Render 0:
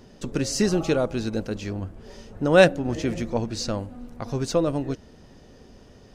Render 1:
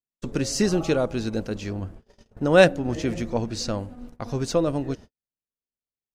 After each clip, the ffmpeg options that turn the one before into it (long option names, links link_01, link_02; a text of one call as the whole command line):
ffmpeg -i in.wav -af "agate=range=-56dB:threshold=-39dB:ratio=16:detection=peak" out.wav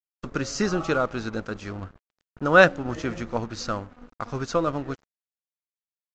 ffmpeg -i in.wav -af "equalizer=frequency=1300:width_type=o:width=0.73:gain=14.5,aresample=16000,aeval=exprs='sgn(val(0))*max(abs(val(0))-0.00794,0)':channel_layout=same,aresample=44100,volume=-3dB" out.wav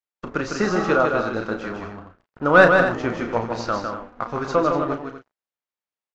ffmpeg -i in.wav -filter_complex "[0:a]asplit=2[link_01][link_02];[link_02]highpass=frequency=720:poles=1,volume=12dB,asoftclip=type=tanh:threshold=-2dB[link_03];[link_01][link_03]amix=inputs=2:normalize=0,lowpass=frequency=1100:poles=1,volume=-6dB,asplit=2[link_04][link_05];[link_05]adelay=34,volume=-8dB[link_06];[link_04][link_06]amix=inputs=2:normalize=0,asplit=2[link_07][link_08];[link_08]aecho=0:1:154.5|242:0.562|0.282[link_09];[link_07][link_09]amix=inputs=2:normalize=0,volume=2dB" out.wav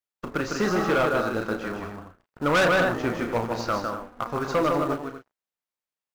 ffmpeg -i in.wav -filter_complex "[0:a]asplit=2[link_01][link_02];[link_02]acrusher=bits=2:mode=log:mix=0:aa=0.000001,volume=-9.5dB[link_03];[link_01][link_03]amix=inputs=2:normalize=0,volume=13.5dB,asoftclip=hard,volume=-13.5dB,volume=-4dB" out.wav